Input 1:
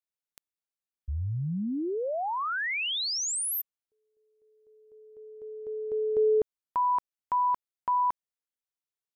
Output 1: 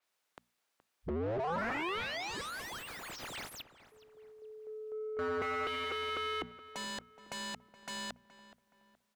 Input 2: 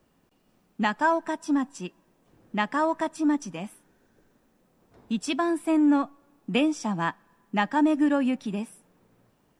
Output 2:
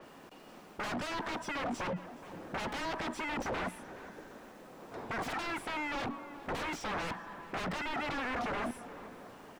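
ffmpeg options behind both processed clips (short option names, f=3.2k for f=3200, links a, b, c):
-filter_complex "[0:a]bandreject=f=60:t=h:w=6,bandreject=f=120:t=h:w=6,bandreject=f=180:t=h:w=6,bandreject=f=240:t=h:w=6,afwtdn=0.02,highshelf=f=4.1k:g=7,areverse,acompressor=threshold=-32dB:ratio=6:attack=20:release=68:detection=rms,areverse,alimiter=level_in=7.5dB:limit=-24dB:level=0:latency=1:release=11,volume=-7.5dB,acrossover=split=220|1600[a][b][c];[a]acompressor=threshold=-41dB:ratio=10[d];[b]acompressor=threshold=-45dB:ratio=1.5[e];[c]acompressor=threshold=-45dB:ratio=1.5[f];[d][e][f]amix=inputs=3:normalize=0,aeval=exprs='0.0299*sin(PI/2*8.91*val(0)/0.0299)':c=same,asplit=2[g][h];[h]highpass=f=720:p=1,volume=20dB,asoftclip=type=tanh:threshold=-30dB[i];[g][i]amix=inputs=2:normalize=0,lowpass=f=1.3k:p=1,volume=-6dB,asplit=2[j][k];[k]adelay=422,lowpass=f=2.1k:p=1,volume=-15dB,asplit=2[l][m];[m]adelay=422,lowpass=f=2.1k:p=1,volume=0.41,asplit=2[n][o];[o]adelay=422,lowpass=f=2.1k:p=1,volume=0.41,asplit=2[p][q];[q]adelay=422,lowpass=f=2.1k:p=1,volume=0.41[r];[j][l][n][p][r]amix=inputs=5:normalize=0,adynamicequalizer=threshold=0.00112:dfrequency=5600:dqfactor=0.7:tfrequency=5600:tqfactor=0.7:attack=5:release=100:ratio=0.375:range=2:mode=cutabove:tftype=highshelf"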